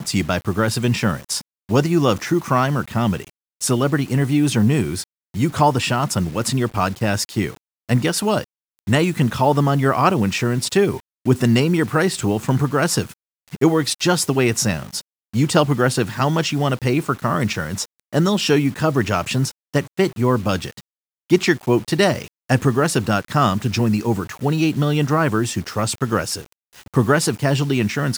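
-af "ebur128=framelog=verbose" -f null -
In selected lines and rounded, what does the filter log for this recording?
Integrated loudness:
  I:         -19.5 LUFS
  Threshold: -29.8 LUFS
Loudness range:
  LRA:         2.0 LU
  Threshold: -39.7 LUFS
  LRA low:   -20.6 LUFS
  LRA high:  -18.6 LUFS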